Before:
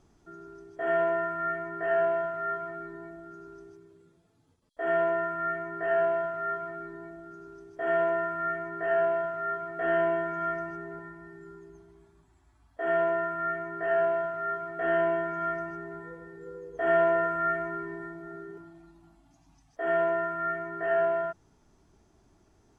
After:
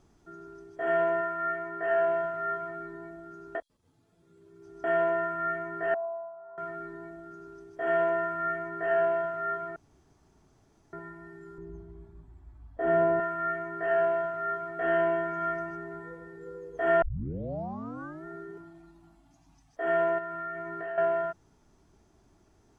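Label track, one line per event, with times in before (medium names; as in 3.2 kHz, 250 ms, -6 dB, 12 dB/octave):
1.210000	2.080000	tone controls bass -6 dB, treble -2 dB
3.550000	4.840000	reverse
5.940000	6.580000	cascade formant filter a
9.760000	10.930000	room tone
11.580000	13.200000	tilt EQ -3.5 dB/octave
17.020000	17.020000	tape start 1.23 s
20.180000	20.980000	compression, threshold -33 dBFS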